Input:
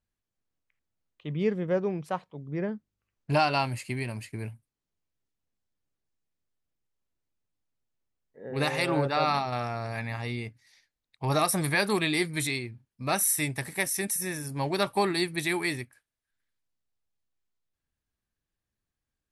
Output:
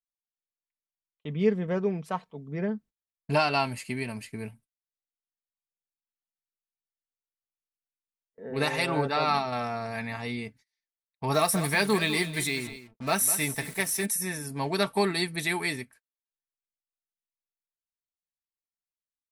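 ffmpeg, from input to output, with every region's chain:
ffmpeg -i in.wav -filter_complex "[0:a]asettb=1/sr,asplit=3[link_01][link_02][link_03];[link_01]atrim=end=11.344[link_04];[link_02]atrim=start=11.34:end=14.06,asetpts=PTS-STARTPTS,afade=type=in:duration=0.004:curve=qsin,afade=type=out:start_time=2.716:duration=0.004:curve=qsin,acrusher=bits=6:mix=0:aa=0.5,aecho=1:1:201:0.224,atrim=end_sample=119952[link_05];[link_03]atrim=start=14.056[link_06];[link_04][link_05]acrossfade=duration=0.004:curve1=hsin:curve2=qsin[link_07];[link_07][link_06]acrossfade=duration=0.004:curve1=qsin:curve2=hsin,agate=range=-27dB:threshold=-52dB:ratio=16:detection=peak,aecho=1:1:4.5:0.49" out.wav

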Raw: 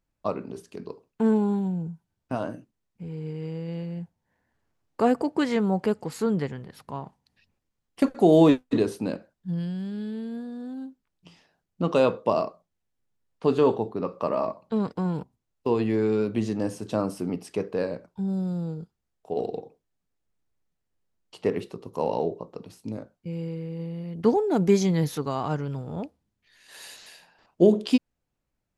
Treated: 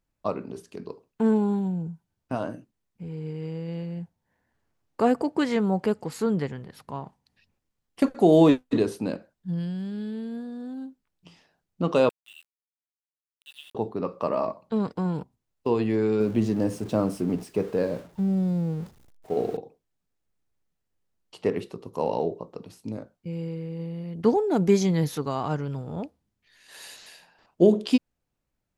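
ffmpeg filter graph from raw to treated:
ffmpeg -i in.wav -filter_complex "[0:a]asettb=1/sr,asplit=3[link_01][link_02][link_03];[link_01]atrim=end=12.094[link_04];[link_02]atrim=start=12.09:end=13.75,asetpts=PTS-STARTPTS,afade=type=in:duration=0.004:curve=qsin,afade=type=out:start_time=1.656:duration=0.004:curve=qsin,asuperpass=centerf=3200:order=12:qfactor=2.6,aeval=exprs='val(0)*gte(abs(val(0)),0.00316)':channel_layout=same[link_05];[link_03]atrim=start=13.746[link_06];[link_04][link_05]acrossfade=duration=0.004:curve1=hsin:curve2=qsin[link_07];[link_07][link_06]acrossfade=duration=0.004:curve1=qsin:curve2=hsin,asettb=1/sr,asplit=3[link_08][link_09][link_10];[link_08]atrim=end=16.204[link_11];[link_09]atrim=start=16.2:end=19.57,asetpts=PTS-STARTPTS,afade=type=in:duration=0.004:curve=qsin,afade=type=out:start_time=3.366:duration=0.004:curve=qsin,aeval=exprs='val(0)+0.5*0.0106*sgn(val(0))':channel_layout=same,tiltshelf=frequency=770:gain=3,agate=range=-33dB:threshold=-37dB:ratio=3:release=100:detection=peak[link_12];[link_10]atrim=start=19.566[link_13];[link_11][link_12]acrossfade=duration=0.004:curve1=hsin:curve2=qsin[link_14];[link_14][link_13]acrossfade=duration=0.004:curve1=qsin:curve2=hsin" out.wav

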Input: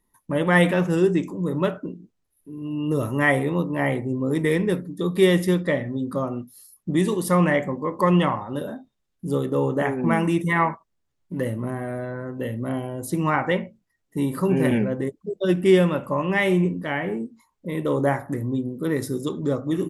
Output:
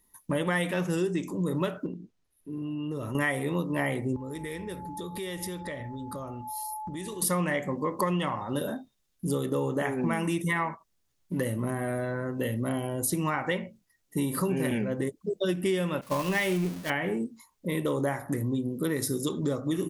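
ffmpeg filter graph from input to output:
ffmpeg -i in.wav -filter_complex "[0:a]asettb=1/sr,asplit=3[link_01][link_02][link_03];[link_01]atrim=end=1.864[link_04];[link_02]atrim=start=1.86:end=3.15,asetpts=PTS-STARTPTS,afade=type=in:duration=0.004:curve=qsin,afade=type=out:start_time=1.286:duration=0.004:curve=qsin,aemphasis=mode=reproduction:type=50fm,acompressor=threshold=-30dB:ratio=6:attack=3.2:release=140:knee=1:detection=peak[link_05];[link_03]atrim=start=3.146[link_06];[link_04][link_05]acrossfade=duration=0.004:curve1=hsin:curve2=qsin[link_07];[link_07][link_06]acrossfade=duration=0.004:curve1=qsin:curve2=hsin,asettb=1/sr,asplit=3[link_08][link_09][link_10];[link_08]atrim=end=4.164[link_11];[link_09]atrim=start=4.16:end=7.22,asetpts=PTS-STARTPTS,afade=type=in:duration=0.004:curve=qsin,afade=type=out:start_time=3.056:duration=0.004:curve=qsin,aeval=exprs='val(0)+0.0178*sin(2*PI*860*n/s)':channel_layout=same,lowshelf=frequency=110:width_type=q:width=1.5:gain=12,acompressor=threshold=-35dB:ratio=6:attack=3.2:release=140:knee=1:detection=peak[link_12];[link_10]atrim=start=7.216[link_13];[link_11][link_12]acrossfade=duration=0.004:curve1=hsin:curve2=qsin[link_14];[link_14][link_13]acrossfade=duration=0.004:curve1=qsin:curve2=hsin,asettb=1/sr,asplit=3[link_15][link_16][link_17];[link_15]atrim=end=16.014[link_18];[link_16]atrim=start=16.01:end=16.9,asetpts=PTS-STARTPTS,afade=type=in:duration=0.004:curve=qsin,afade=type=out:start_time=0.886:duration=0.004:curve=qsin,aeval=exprs='val(0)+0.5*0.0376*sgn(val(0))':channel_layout=same,agate=range=-33dB:threshold=-20dB:ratio=3:release=100:detection=peak[link_19];[link_17]atrim=start=16.896[link_20];[link_18][link_19]acrossfade=duration=0.004:curve1=hsin:curve2=qsin[link_21];[link_21][link_20]acrossfade=duration=0.004:curve1=qsin:curve2=hsin,highshelf=frequency=3100:gain=10.5,bandreject=frequency=7600:width=22,acompressor=threshold=-25dB:ratio=6" out.wav

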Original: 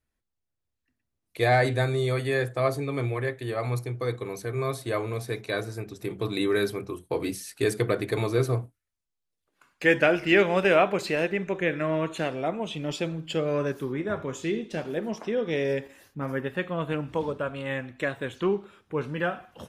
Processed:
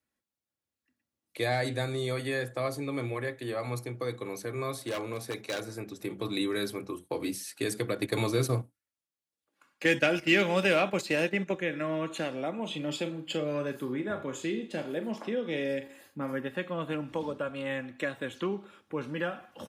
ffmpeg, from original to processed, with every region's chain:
ffmpeg -i in.wav -filter_complex "[0:a]asettb=1/sr,asplit=3[link_01][link_02][link_03];[link_01]atrim=end=4.784[link_04];[link_02]atrim=start=4.78:end=5.68,asetpts=PTS-STARTPTS,afade=type=in:duration=0.004:curve=qsin,afade=type=out:start_time=0.896:duration=0.004:curve=qsin,lowshelf=frequency=200:gain=-2.5,aeval=exprs='0.0708*(abs(mod(val(0)/0.0708+3,4)-2)-1)':channel_layout=same[link_05];[link_03]atrim=start=5.676[link_06];[link_04][link_05]acrossfade=duration=0.004:curve1=hsin:curve2=qsin[link_07];[link_07][link_06]acrossfade=duration=0.004:curve1=qsin:curve2=hsin,asettb=1/sr,asplit=3[link_08][link_09][link_10];[link_08]atrim=end=7.954[link_11];[link_09]atrim=start=7.95:end=11.55,asetpts=PTS-STARTPTS,afade=type=in:duration=0.004:curve=qsin,afade=type=out:start_time=3.596:duration=0.004:curve=qsin,agate=range=-9dB:threshold=-32dB:ratio=16:release=100:detection=peak,acontrast=48[link_12];[link_10]atrim=start=11.546[link_13];[link_11][link_12]acrossfade=duration=0.004:curve1=hsin:curve2=qsin[link_14];[link_14][link_13]acrossfade=duration=0.004:curve1=qsin:curve2=hsin,asettb=1/sr,asplit=3[link_15][link_16][link_17];[link_15]atrim=end=12.544[link_18];[link_16]atrim=start=12.54:end=16.33,asetpts=PTS-STARTPTS,afade=type=in:duration=0.004:curve=qsin,afade=type=out:start_time=3.786:duration=0.004:curve=qsin,bandreject=frequency=5700:width=5.3,asplit=2[link_19][link_20];[link_20]adelay=40,volume=-10.5dB[link_21];[link_19][link_21]amix=inputs=2:normalize=0,atrim=end_sample=167139[link_22];[link_17]atrim=start=16.326[link_23];[link_18][link_22]acrossfade=duration=0.004:curve1=hsin:curve2=qsin[link_24];[link_24][link_23]acrossfade=duration=0.004:curve1=qsin:curve2=hsin,aecho=1:1:3.6:0.33,acrossover=split=180|3000[link_25][link_26][link_27];[link_26]acompressor=threshold=-32dB:ratio=2[link_28];[link_25][link_28][link_27]amix=inputs=3:normalize=0,highpass=130,volume=-1dB" out.wav

